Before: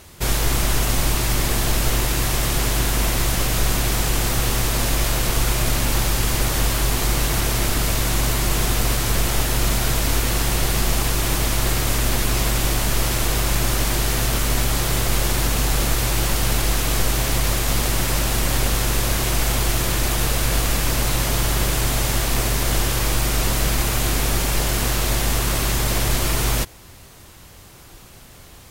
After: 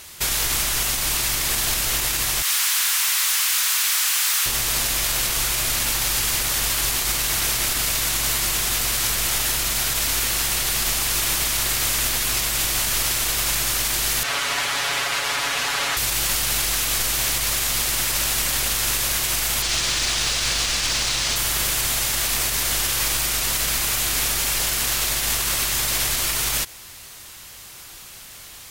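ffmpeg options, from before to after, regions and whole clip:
-filter_complex "[0:a]asettb=1/sr,asplit=3[s0][s1][s2];[s0]atrim=end=2.424[s3];[s1]atrim=start=2.42:end=4.46,asetpts=PTS-STARTPTS,afade=t=in:d=0.004:c=qsin,afade=t=out:st=2.036:d=0.004:c=qsin,highpass=f=1000:w=0.5412,highpass=f=1000:w=1.3066,aeval=exprs='val(0)+0.00126*(sin(2*PI*60*n/s)+sin(2*PI*2*60*n/s)/2+sin(2*PI*3*60*n/s)/3+sin(2*PI*4*60*n/s)/4+sin(2*PI*5*60*n/s)/5)':c=same,asoftclip=type=hard:threshold=0.0631[s4];[s2]atrim=start=4.456[s5];[s3][s4]acrossfade=d=0.004:c1=hsin:c2=qsin[s6];[s6][s5]acrossfade=d=0.004:c1=qsin:c2=hsin,asettb=1/sr,asplit=3[s7][s8][s9];[s7]atrim=end=14.234[s10];[s8]atrim=start=14.23:end=15.97,asetpts=PTS-STARTPTS,afade=t=in:d=0.004:c=qsin,afade=t=out:st=1.736:d=0.004:c=qsin,bandpass=f=1200:t=q:w=0.58,aecho=1:1:7.1:0.9,atrim=end_sample=76734[s11];[s9]atrim=start=15.966[s12];[s10][s11]acrossfade=d=0.004:c1=hsin:c2=qsin[s13];[s13][s12]acrossfade=d=0.004:c1=qsin:c2=hsin,asettb=1/sr,asplit=3[s14][s15][s16];[s14]atrim=end=19.624[s17];[s15]atrim=start=19.62:end=21.36,asetpts=PTS-STARTPTS,afade=t=in:d=0.004:c=qsin,afade=t=out:st=1.736:d=0.004:c=qsin,lowpass=7200,equalizer=f=4800:t=o:w=1.5:g=5,acrusher=bits=6:mode=log:mix=0:aa=0.000001[s18];[s16]atrim=start=21.356[s19];[s17][s18]acrossfade=d=0.004:c1=hsin:c2=qsin[s20];[s20][s19]acrossfade=d=0.004:c1=qsin:c2=hsin,tiltshelf=f=970:g=-8,alimiter=limit=0.251:level=0:latency=1:release=80"

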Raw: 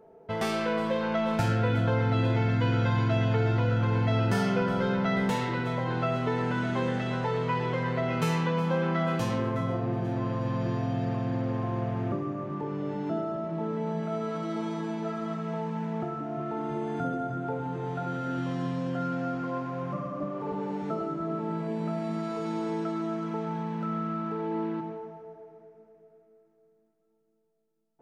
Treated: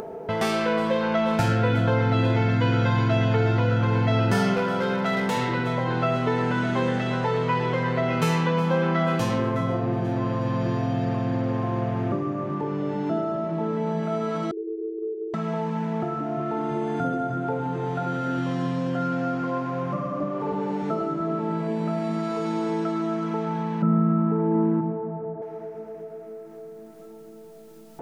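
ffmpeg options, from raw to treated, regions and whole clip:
-filter_complex "[0:a]asettb=1/sr,asplit=3[s0][s1][s2];[s0]atrim=end=4.544[s3];[s1]atrim=start=4.54:end=5.37,asetpts=PTS-STARTPTS,afade=t=in:d=0.004:c=qsin,afade=t=out:st=0.826:d=0.004:c=qsin,lowshelf=f=150:g=-10.5,volume=15,asoftclip=hard,volume=0.0668[s4];[s2]atrim=start=5.366[s5];[s3][s4]acrossfade=d=0.004:c1=hsin:c2=qsin[s6];[s6][s5]acrossfade=d=0.004:c1=qsin:c2=hsin,asettb=1/sr,asplit=3[s7][s8][s9];[s7]atrim=end=14.514[s10];[s8]atrim=start=14.51:end=15.34,asetpts=PTS-STARTPTS,afade=t=in:d=0.004:c=qsin,afade=t=out:st=0.826:d=0.004:c=qsin,aeval=exprs='val(0)+0.5*0.00794*sgn(val(0))':c=same,acontrast=57,asuperpass=centerf=390:order=8:qfactor=4.5[s11];[s9]atrim=start=15.336[s12];[s10][s11]acrossfade=d=0.004:c1=hsin:c2=qsin[s13];[s13][s12]acrossfade=d=0.004:c1=qsin:c2=hsin,asettb=1/sr,asplit=3[s14][s15][s16];[s14]atrim=end=23.824[s17];[s15]atrim=start=23.82:end=25.42,asetpts=PTS-STARTPTS,afade=t=in:d=0.004:c=qsin,afade=t=out:st=1.596:d=0.004:c=qsin,lowpass=1300,equalizer=f=160:t=o:w=1.7:g=10[s18];[s16]atrim=start=25.416[s19];[s17][s18]acrossfade=d=0.004:c1=hsin:c2=qsin[s20];[s20][s19]acrossfade=d=0.004:c1=qsin:c2=hsin,lowshelf=f=60:g=-7,acompressor=mode=upward:threshold=0.0355:ratio=2.5,volume=1.78"

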